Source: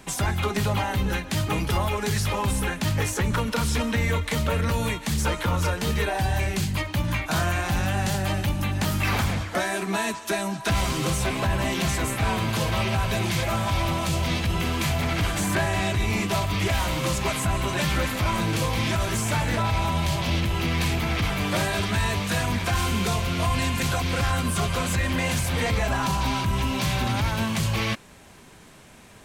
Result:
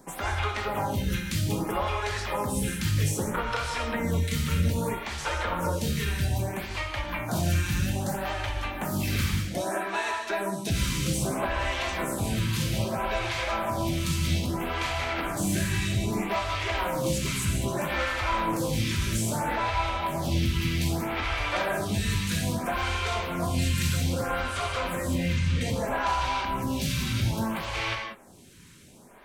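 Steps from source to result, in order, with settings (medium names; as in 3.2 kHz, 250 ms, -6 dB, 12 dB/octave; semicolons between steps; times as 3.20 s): 25.18–25.61 s: distance through air 160 m; gated-style reverb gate 220 ms flat, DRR 1.5 dB; lamp-driven phase shifter 0.62 Hz; trim -2 dB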